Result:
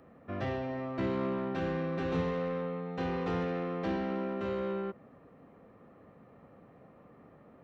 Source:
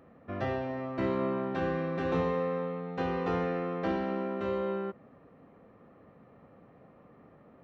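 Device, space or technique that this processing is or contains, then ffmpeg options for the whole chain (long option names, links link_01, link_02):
one-band saturation: -filter_complex "[0:a]acrossover=split=330|2700[link_01][link_02][link_03];[link_02]asoftclip=type=tanh:threshold=-33.5dB[link_04];[link_01][link_04][link_03]amix=inputs=3:normalize=0"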